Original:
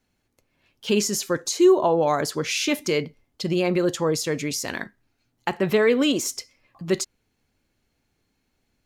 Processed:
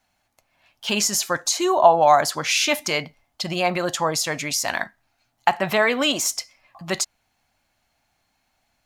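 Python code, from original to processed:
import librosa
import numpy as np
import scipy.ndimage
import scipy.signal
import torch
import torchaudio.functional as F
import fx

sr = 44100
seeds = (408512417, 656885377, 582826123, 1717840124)

y = fx.low_shelf_res(x, sr, hz=550.0, db=-7.5, q=3.0)
y = y * librosa.db_to_amplitude(5.0)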